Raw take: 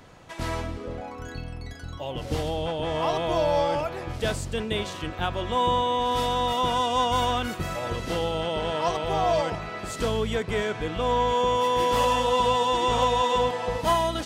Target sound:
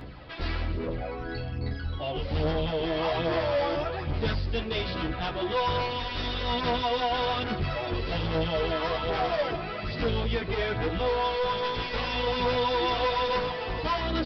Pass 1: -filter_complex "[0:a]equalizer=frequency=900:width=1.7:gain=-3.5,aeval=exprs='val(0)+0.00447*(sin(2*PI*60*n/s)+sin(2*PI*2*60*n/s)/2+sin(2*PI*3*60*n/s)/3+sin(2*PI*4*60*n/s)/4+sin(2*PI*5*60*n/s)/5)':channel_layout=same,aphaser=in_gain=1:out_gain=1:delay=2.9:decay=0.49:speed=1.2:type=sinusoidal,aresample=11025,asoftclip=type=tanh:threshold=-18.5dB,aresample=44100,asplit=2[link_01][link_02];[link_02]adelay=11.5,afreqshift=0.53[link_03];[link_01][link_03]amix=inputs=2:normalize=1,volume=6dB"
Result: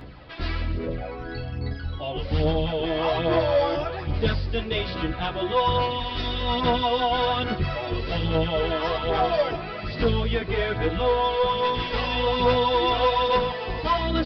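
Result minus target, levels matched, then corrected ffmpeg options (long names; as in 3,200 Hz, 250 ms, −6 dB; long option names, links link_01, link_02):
soft clipping: distortion −8 dB
-filter_complex "[0:a]equalizer=frequency=900:width=1.7:gain=-3.5,aeval=exprs='val(0)+0.00447*(sin(2*PI*60*n/s)+sin(2*PI*2*60*n/s)/2+sin(2*PI*3*60*n/s)/3+sin(2*PI*4*60*n/s)/4+sin(2*PI*5*60*n/s)/5)':channel_layout=same,aphaser=in_gain=1:out_gain=1:delay=2.9:decay=0.49:speed=1.2:type=sinusoidal,aresample=11025,asoftclip=type=tanh:threshold=-27.5dB,aresample=44100,asplit=2[link_01][link_02];[link_02]adelay=11.5,afreqshift=0.53[link_03];[link_01][link_03]amix=inputs=2:normalize=1,volume=6dB"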